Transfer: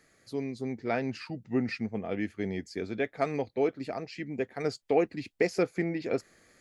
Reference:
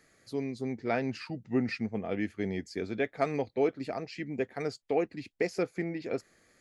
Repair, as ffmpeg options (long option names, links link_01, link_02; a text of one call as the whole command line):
ffmpeg -i in.wav -af "asetnsamples=nb_out_samples=441:pad=0,asendcmd='4.64 volume volume -3.5dB',volume=0dB" out.wav